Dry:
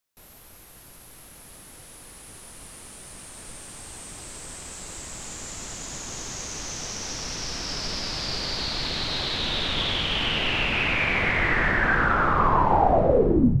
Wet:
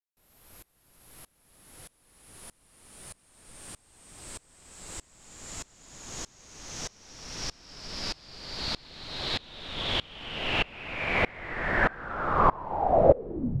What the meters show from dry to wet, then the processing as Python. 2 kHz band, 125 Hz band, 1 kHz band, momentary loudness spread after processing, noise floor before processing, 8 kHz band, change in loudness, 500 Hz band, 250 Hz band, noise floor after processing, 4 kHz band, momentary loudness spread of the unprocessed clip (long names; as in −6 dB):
−7.5 dB, −7.5 dB, −5.0 dB, 22 LU, −49 dBFS, −8.5 dB, −5.5 dB, −2.0 dB, −9.0 dB, −67 dBFS, −7.5 dB, 21 LU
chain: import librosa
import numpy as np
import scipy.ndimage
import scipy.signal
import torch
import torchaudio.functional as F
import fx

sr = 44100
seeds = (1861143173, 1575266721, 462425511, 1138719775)

y = fx.notch(x, sr, hz=6100.0, q=26.0)
y = fx.dynamic_eq(y, sr, hz=630.0, q=1.1, threshold_db=-36.0, ratio=4.0, max_db=6)
y = fx.tremolo_decay(y, sr, direction='swelling', hz=1.6, depth_db=26)